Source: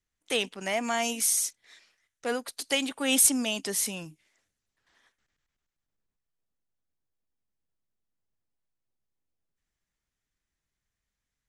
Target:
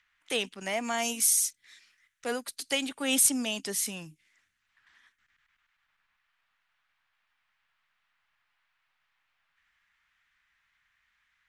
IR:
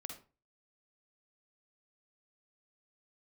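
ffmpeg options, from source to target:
-filter_complex "[0:a]asettb=1/sr,asplit=3[a][b][c];[a]atrim=end=0.984[d];[b]atrim=start=0.98:end=2.55,asetpts=PTS-STARTPTS,afade=t=in:d=0.004:c=qsin,afade=t=out:st=1.566:d=0.004:c=qsin,highshelf=f=6.8k:g=5.5[e];[c]atrim=start=2.546[f];[d][e]acrossfade=d=0.004:c1=hsin:c2=qsin[g];[g][f]acrossfade=d=0.004:c1=qsin:c2=hsin,acrossover=split=360|1100|2900[h][i][j][k];[i]aeval=exprs='sgn(val(0))*max(abs(val(0))-0.00211,0)':c=same[l];[j]acompressor=mode=upward:threshold=-51dB:ratio=2.5[m];[h][l][m][k]amix=inputs=4:normalize=0,volume=-2dB"

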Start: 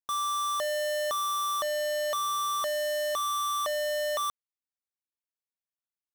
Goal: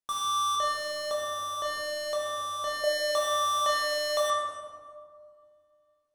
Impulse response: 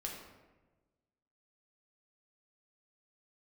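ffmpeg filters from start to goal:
-filter_complex "[0:a]asettb=1/sr,asplit=3[a][b][c];[a]atrim=end=0.554[d];[b]atrim=start=0.55:end=2.84,asetpts=PTS-STARTPTS,afade=t=in:d=0.004:c=qsin,afade=t=out:st=2.286:d=0.004:c=qsin,acrossover=split=470[e][f];[f]acompressor=threshold=-33dB:ratio=6[g];[e][g]amix=inputs=2:normalize=0[h];[c]atrim=start=2.836[i];[d][h]acrossfade=d=0.004:c1=hsin:c2=qsin[j];[j][i]acrossfade=d=0.004:c1=qsin:c2=hsin[k];[1:a]atrim=start_sample=2205,asetrate=22491,aresample=44100[l];[k][l]afir=irnorm=-1:irlink=0"

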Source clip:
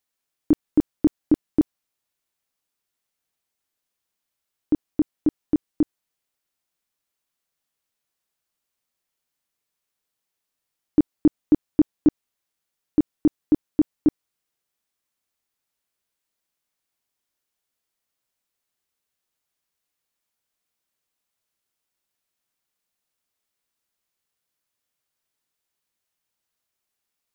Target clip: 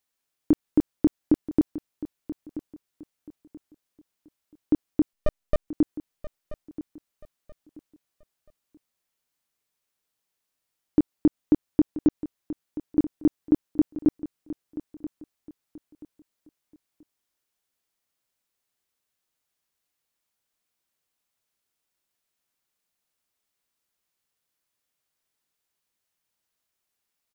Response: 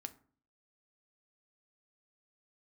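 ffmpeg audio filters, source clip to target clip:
-filter_complex "[0:a]asettb=1/sr,asplit=3[a][b][c];[a]atrim=end=5.134[d];[b]atrim=start=5.13:end=5.68,asetpts=PTS-STARTPTS,afade=t=in:d=0.004:c=qsin,afade=t=out:st=0.546:d=0.004:c=qsin,aeval=exprs='abs(val(0))':c=same[e];[c]atrim=start=5.676[f];[d][e]acrossfade=d=0.004:c1=hsin:c2=qsin[g];[g][f]acrossfade=d=0.004:c1=qsin:c2=hsin,acompressor=threshold=-15dB:ratio=6,aecho=1:1:981|1962|2943:0.188|0.0546|0.0158"

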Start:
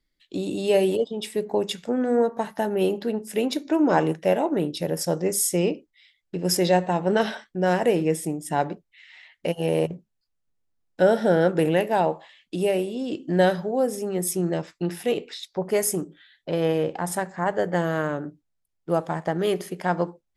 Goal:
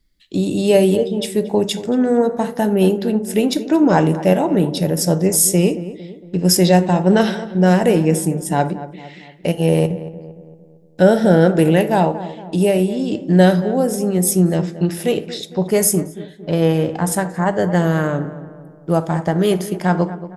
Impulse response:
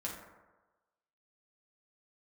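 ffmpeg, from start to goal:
-filter_complex "[0:a]bass=f=250:g=9,treble=f=4k:g=5,asplit=2[a][b];[b]adelay=228,lowpass=f=1.5k:p=1,volume=-13.5dB,asplit=2[c][d];[d]adelay=228,lowpass=f=1.5k:p=1,volume=0.51,asplit=2[e][f];[f]adelay=228,lowpass=f=1.5k:p=1,volume=0.51,asplit=2[g][h];[h]adelay=228,lowpass=f=1.5k:p=1,volume=0.51,asplit=2[i][j];[j]adelay=228,lowpass=f=1.5k:p=1,volume=0.51[k];[a][c][e][g][i][k]amix=inputs=6:normalize=0,asplit=2[l][m];[1:a]atrim=start_sample=2205,atrim=end_sample=4410[n];[m][n]afir=irnorm=-1:irlink=0,volume=-8dB[o];[l][o]amix=inputs=2:normalize=0,volume=2.5dB"

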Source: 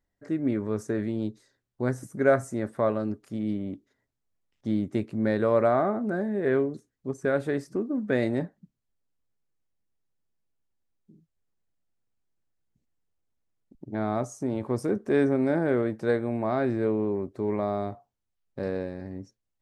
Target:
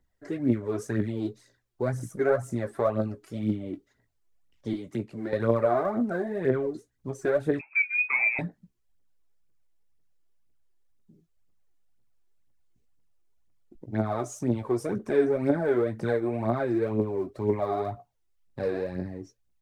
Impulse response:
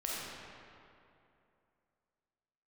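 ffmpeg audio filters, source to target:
-filter_complex "[0:a]asettb=1/sr,asplit=3[a][b][c];[a]atrim=end=4.734[d];[b]atrim=start=4.73:end=5.33,asetpts=PTS-STARTPTS,afade=t=in:d=0.004:c=qsin,afade=t=out:st=0.596:d=0.004:c=qsin,acrossover=split=190|1100[e][f][g];[e]acompressor=threshold=-45dB:ratio=4[h];[f]acompressor=threshold=-34dB:ratio=4[i];[g]acompressor=threshold=-52dB:ratio=4[j];[h][i][j]amix=inputs=3:normalize=0[k];[c]atrim=start=5.326[l];[d][k]acrossfade=d=0.004:c1=hsin:c2=qsin[m];[m][l]acrossfade=d=0.004:c1=qsin:c2=hsin,aphaser=in_gain=1:out_gain=1:delay=3.1:decay=0.67:speed=2:type=triangular,acrossover=split=220|1300[n][o][p];[p]alimiter=level_in=5.5dB:limit=-24dB:level=0:latency=1:release=229,volume=-5.5dB[q];[n][o][q]amix=inputs=3:normalize=0,asettb=1/sr,asplit=3[r][s][t];[r]atrim=end=7.594[u];[s]atrim=start=7.59:end=8.39,asetpts=PTS-STARTPTS,afade=t=in:d=0.004:c=qsin,afade=t=out:st=0.796:d=0.004:c=qsin,lowpass=f=2.3k:t=q:w=0.5098,lowpass=f=2.3k:t=q:w=0.6013,lowpass=f=2.3k:t=q:w=0.9,lowpass=f=2.3k:t=q:w=2.563,afreqshift=-2700[v];[t]atrim=start=8.386[w];[u][v]acrossfade=d=0.004:c1=hsin:c2=qsin[x];[x][w]acrossfade=d=0.004:c1=qsin:c2=hsin,asplit=2[y][z];[z]adelay=17,volume=-9.5dB[aa];[y][aa]amix=inputs=2:normalize=0,asplit=2[ab][ac];[ac]acompressor=threshold=-28dB:ratio=6,volume=2dB[ad];[ab][ad]amix=inputs=2:normalize=0,volume=-6.5dB"

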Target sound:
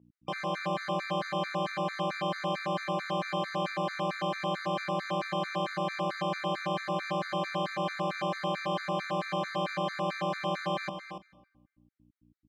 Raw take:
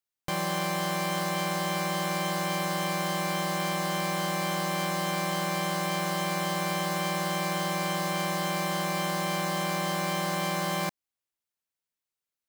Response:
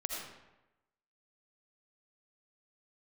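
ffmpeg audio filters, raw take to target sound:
-filter_complex "[0:a]aeval=exprs='val(0)+0.00282*(sin(2*PI*60*n/s)+sin(2*PI*2*60*n/s)/2+sin(2*PI*3*60*n/s)/3+sin(2*PI*4*60*n/s)/4+sin(2*PI*5*60*n/s)/5)':c=same,highpass=190,lowpass=3.2k,aecho=1:1:286:0.355,asplit=2[a][b];[1:a]atrim=start_sample=2205,adelay=85[c];[b][c]afir=irnorm=-1:irlink=0,volume=-17dB[d];[a][d]amix=inputs=2:normalize=0,afftfilt=real='re*gt(sin(2*PI*4.5*pts/sr)*(1-2*mod(floor(b*sr/1024/1200),2)),0)':imag='im*gt(sin(2*PI*4.5*pts/sr)*(1-2*mod(floor(b*sr/1024/1200),2)),0)':win_size=1024:overlap=0.75"

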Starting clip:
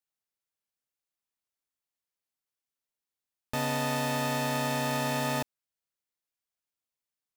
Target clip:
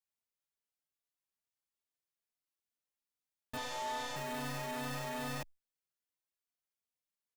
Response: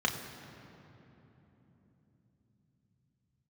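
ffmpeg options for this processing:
-filter_complex "[0:a]asettb=1/sr,asplit=3[a][b][c];[a]atrim=end=3.574[d];[b]atrim=start=3.57:end=4.16,asetpts=PTS-STARTPTS,afade=t=in:d=0.004:c=qsin,afade=t=out:st=0.586:d=0.004:c=qsin,highpass=380,equalizer=f=490:t=q:w=4:g=3,equalizer=f=900:t=q:w=4:g=7,equalizer=f=2.4k:t=q:w=4:g=-7,equalizer=f=3.5k:t=q:w=4:g=7,equalizer=f=6.8k:t=q:w=4:g=6,lowpass=f=7.2k:w=0.5412,lowpass=f=7.2k:w=1.3066[e];[c]atrim=start=4.156[f];[d][e]acrossfade=d=0.004:c1=hsin:c2=qsin[g];[g][f]acrossfade=d=0.004:c1=qsin:c2=hsin,aeval=exprs='(tanh(44.7*val(0)+0.35)-tanh(0.35))/44.7':c=same,asplit=2[h][i];[i]adelay=3.3,afreqshift=2.4[j];[h][j]amix=inputs=2:normalize=1,volume=-1dB"

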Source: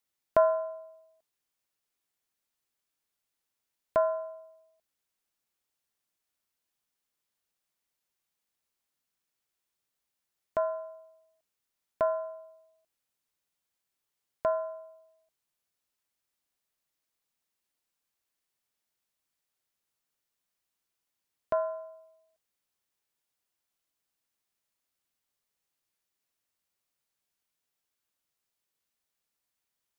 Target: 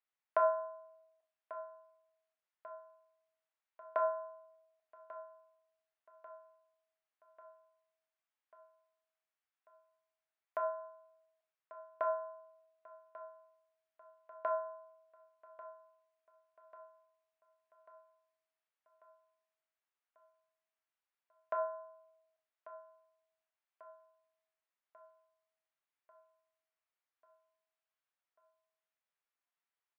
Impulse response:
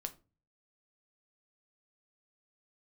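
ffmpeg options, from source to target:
-filter_complex "[0:a]highpass=770,lowpass=2.2k,aecho=1:1:1142|2284|3426|4568|5710|6852:0.158|0.0935|0.0552|0.0326|0.0192|0.0113[a];[1:a]atrim=start_sample=2205,asetrate=26901,aresample=44100[b];[a][b]afir=irnorm=-1:irlink=0,volume=-2.5dB"

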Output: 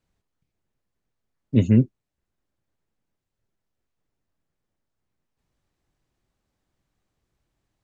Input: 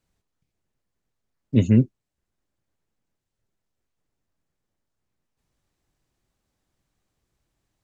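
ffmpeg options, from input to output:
-af "highshelf=f=5.4k:g=-6.5"

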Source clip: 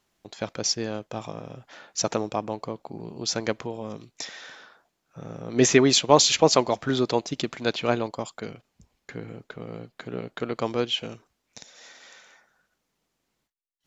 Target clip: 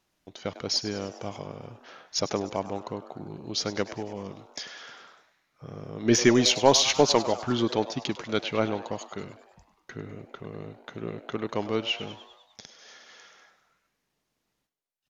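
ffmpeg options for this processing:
-filter_complex "[0:a]aeval=exprs='0.841*(cos(1*acos(clip(val(0)/0.841,-1,1)))-cos(1*PI/2))+0.0944*(cos(2*acos(clip(val(0)/0.841,-1,1)))-cos(2*PI/2))':c=same,asplit=7[a][b][c][d][e][f][g];[b]adelay=92,afreqshift=140,volume=-15dB[h];[c]adelay=184,afreqshift=280,volume=-19.4dB[i];[d]adelay=276,afreqshift=420,volume=-23.9dB[j];[e]adelay=368,afreqshift=560,volume=-28.3dB[k];[f]adelay=460,afreqshift=700,volume=-32.7dB[l];[g]adelay=552,afreqshift=840,volume=-37.2dB[m];[a][h][i][j][k][l][m]amix=inputs=7:normalize=0,asetrate=40517,aresample=44100,volume=-2dB"

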